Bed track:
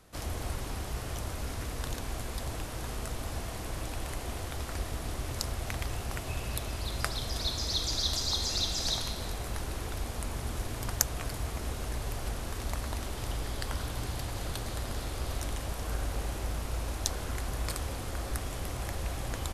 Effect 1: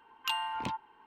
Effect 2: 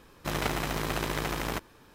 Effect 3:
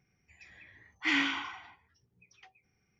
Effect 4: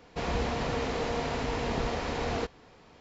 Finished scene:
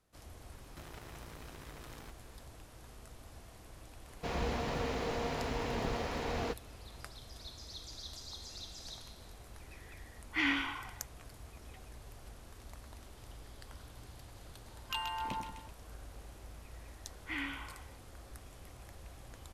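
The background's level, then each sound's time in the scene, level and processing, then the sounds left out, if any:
bed track −16.5 dB
0:00.52: mix in 2 −7 dB + downward compressor, threshold −41 dBFS
0:04.07: mix in 4 −5 dB + one scale factor per block 7 bits
0:09.31: mix in 3 −2 dB + low-pass filter 3,500 Hz 6 dB per octave
0:14.65: mix in 1 −5.5 dB + echo with a time of its own for lows and highs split 1,200 Hz, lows 89 ms, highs 129 ms, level −6 dB
0:16.24: mix in 3 −10 dB + low-pass filter 3,000 Hz

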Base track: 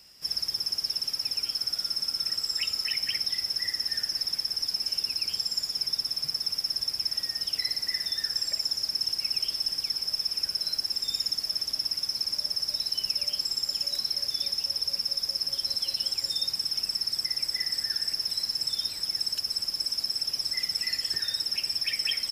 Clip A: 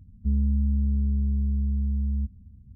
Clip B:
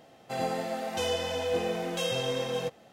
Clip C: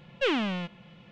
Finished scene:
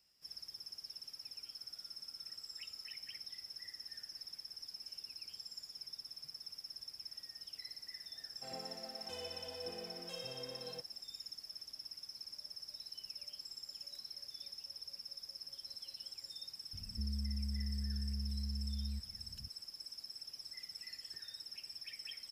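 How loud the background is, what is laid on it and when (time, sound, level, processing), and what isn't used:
base track −19.5 dB
0:08.12: mix in B −18 dB
0:16.73: mix in A −15.5 dB + multiband upward and downward compressor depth 70%
not used: C

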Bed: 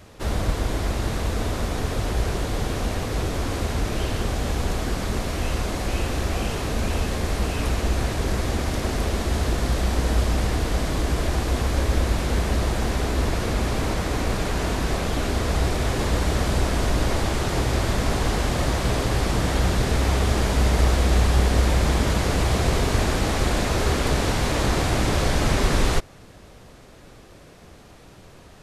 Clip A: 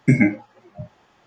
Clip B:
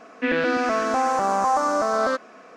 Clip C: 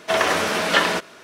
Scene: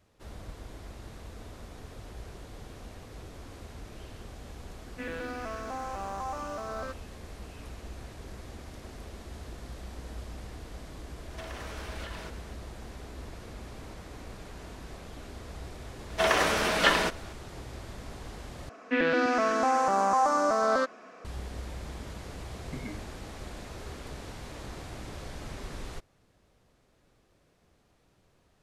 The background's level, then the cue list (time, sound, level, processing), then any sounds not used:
bed −20 dB
0:04.76: mix in B −15 dB + mu-law and A-law mismatch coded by A
0:11.30: mix in C −10.5 dB + downward compressor 10 to 1, threshold −29 dBFS
0:16.10: mix in C −5 dB
0:18.69: overwrite with B −3.5 dB
0:22.65: mix in A −18 dB + downward compressor, threshold −17 dBFS

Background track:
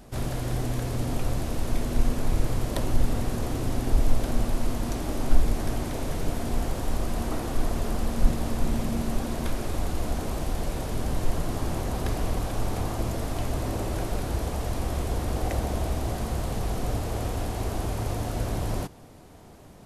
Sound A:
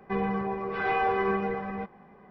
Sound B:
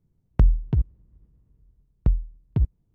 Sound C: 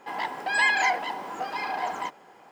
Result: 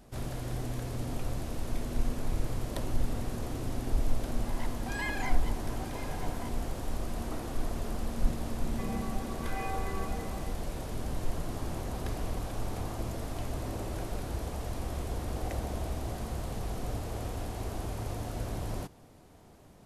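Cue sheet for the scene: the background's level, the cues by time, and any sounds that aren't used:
background track −7 dB
0:04.40: mix in C −14.5 dB
0:08.68: mix in A −12.5 dB + comb filter 3.6 ms, depth 48%
not used: B

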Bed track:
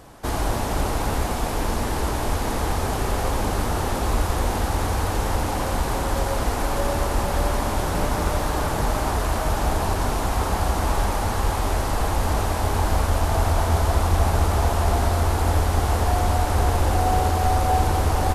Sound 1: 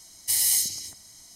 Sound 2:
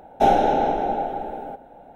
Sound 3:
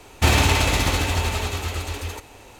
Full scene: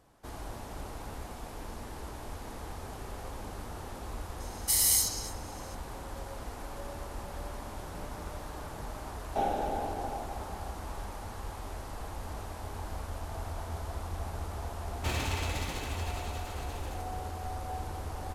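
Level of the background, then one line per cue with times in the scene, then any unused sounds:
bed track −18 dB
0:04.40: mix in 1 −3 dB
0:09.15: mix in 2 −14 dB
0:14.82: mix in 3 −16 dB

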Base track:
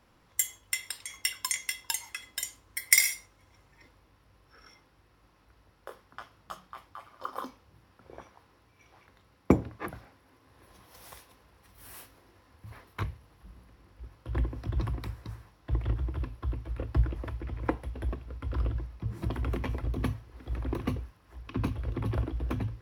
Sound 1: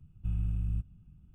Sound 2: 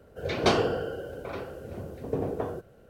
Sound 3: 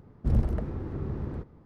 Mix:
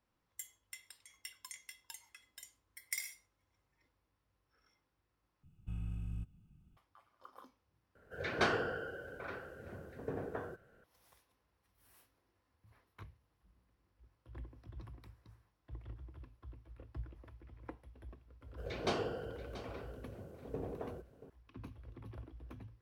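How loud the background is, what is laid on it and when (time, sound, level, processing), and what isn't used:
base track −19 dB
0:05.43: overwrite with 1 −0.5 dB + low-shelf EQ 200 Hz −10.5 dB
0:07.95: overwrite with 2 −11.5 dB + parametric band 1,600 Hz +13 dB 0.73 octaves
0:18.41: mix in 2 −12.5 dB + single-tap delay 682 ms −14.5 dB
not used: 3

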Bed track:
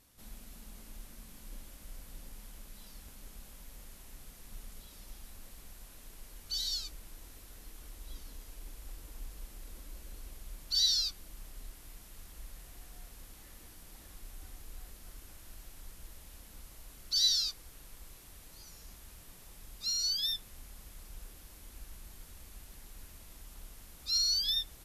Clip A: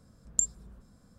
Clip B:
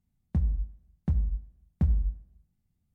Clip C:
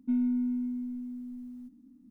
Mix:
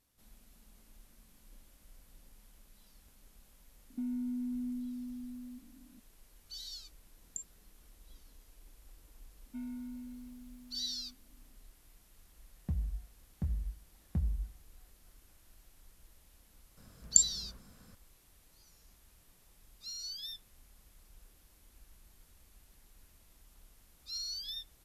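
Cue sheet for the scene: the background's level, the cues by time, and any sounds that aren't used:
bed track −10.5 dB
0:03.90: mix in C −2.5 dB + downward compressor, threshold −32 dBFS
0:06.97: mix in A −16.5 dB + high-pass filter 160 Hz 24 dB per octave
0:09.46: mix in C −1.5 dB + high-pass filter 1,100 Hz 6 dB per octave
0:12.34: mix in B −8.5 dB
0:16.77: mix in A −0.5 dB + parametric band 2,700 Hz +8 dB 2.7 octaves

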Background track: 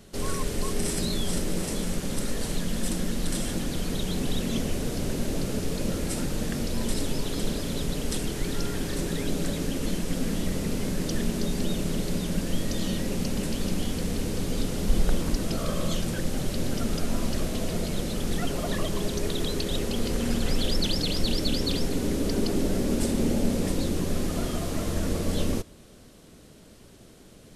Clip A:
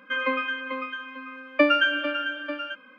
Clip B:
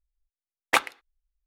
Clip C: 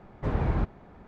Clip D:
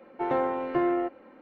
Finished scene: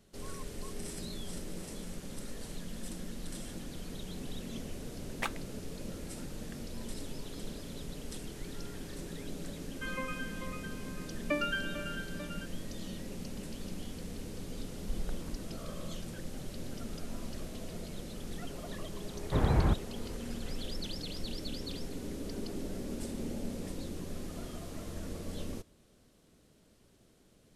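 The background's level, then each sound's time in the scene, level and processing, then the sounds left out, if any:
background track −13.5 dB
0:04.49: mix in B −14.5 dB
0:09.71: mix in A −13.5 dB
0:19.09: mix in C
not used: D

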